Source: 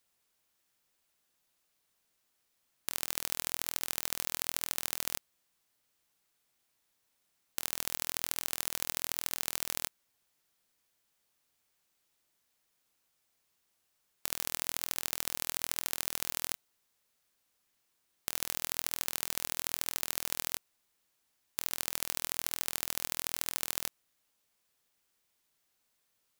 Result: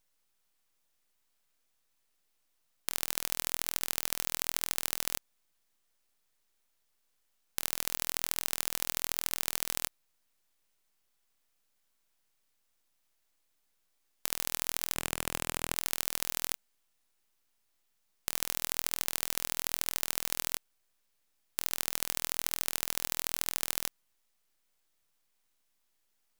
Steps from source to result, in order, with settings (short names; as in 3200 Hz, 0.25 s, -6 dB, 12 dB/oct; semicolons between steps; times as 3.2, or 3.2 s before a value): 14.95–15.76 elliptic band-stop 2500–5000 Hz; full-wave rectifier; gain +2 dB